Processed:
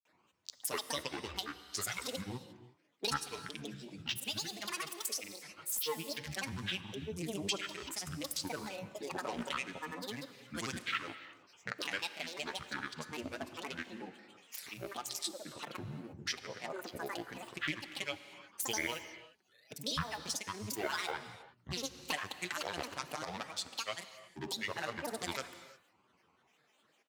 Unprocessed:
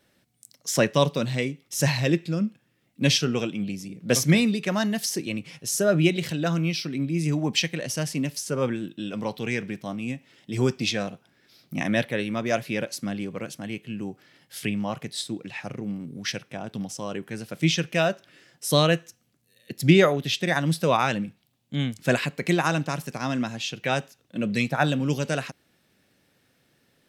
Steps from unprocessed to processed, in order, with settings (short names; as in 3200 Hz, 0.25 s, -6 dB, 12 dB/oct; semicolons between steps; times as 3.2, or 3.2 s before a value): Wiener smoothing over 15 samples; LPF 2800 Hz 6 dB/oct; differentiator; comb 6.5 ms, depth 62%; compressor 5:1, threshold -53 dBFS, peak gain reduction 22.5 dB; grains, pitch spread up and down by 12 st; non-linear reverb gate 0.38 s flat, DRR 11.5 dB; gain +18 dB